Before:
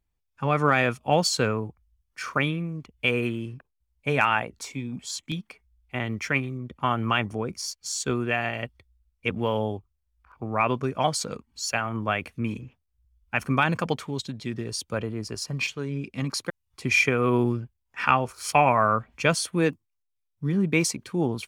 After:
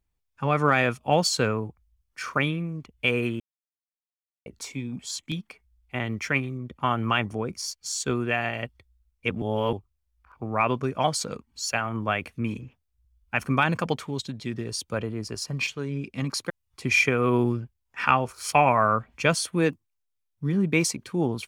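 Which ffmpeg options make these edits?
-filter_complex "[0:a]asplit=5[s0][s1][s2][s3][s4];[s0]atrim=end=3.4,asetpts=PTS-STARTPTS,afade=t=out:st=3.396:d=0.004:c=hsin[s5];[s1]atrim=start=3.4:end=4.46,asetpts=PTS-STARTPTS,volume=0[s6];[s2]atrim=start=4.46:end=9.422,asetpts=PTS-STARTPTS,afade=t=in:d=0.004:c=hsin[s7];[s3]atrim=start=9.418:end=9.732,asetpts=PTS-STARTPTS,areverse[s8];[s4]atrim=start=9.728[s9];[s5][s6][s7]concat=n=3:v=0:a=1[s10];[s10][s8]acrossfade=d=0.004:c1=hsin:c2=hsin[s11];[s11][s9]acrossfade=d=0.004:c1=hsin:c2=hsin"

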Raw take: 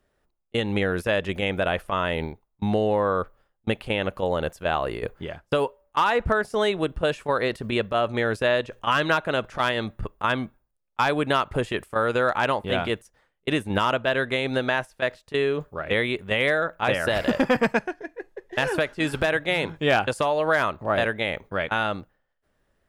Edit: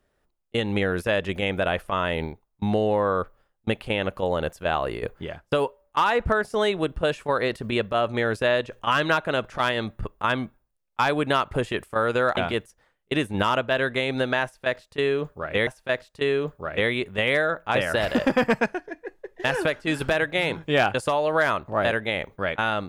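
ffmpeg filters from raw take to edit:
-filter_complex "[0:a]asplit=3[s0][s1][s2];[s0]atrim=end=12.372[s3];[s1]atrim=start=12.728:end=16.032[s4];[s2]atrim=start=14.798[s5];[s3][s4]acrossfade=d=0.004:c1=hsin:c2=hsin[s6];[s6][s5]acrossfade=d=0.004:c1=hsin:c2=hsin"

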